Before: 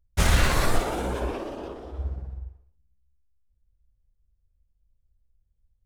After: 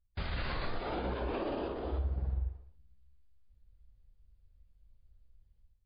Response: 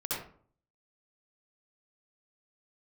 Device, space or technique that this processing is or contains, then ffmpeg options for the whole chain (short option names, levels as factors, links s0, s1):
low-bitrate web radio: -af "dynaudnorm=f=170:g=5:m=5.01,alimiter=limit=0.126:level=0:latency=1:release=229,volume=0.398" -ar 11025 -c:a libmp3lame -b:a 24k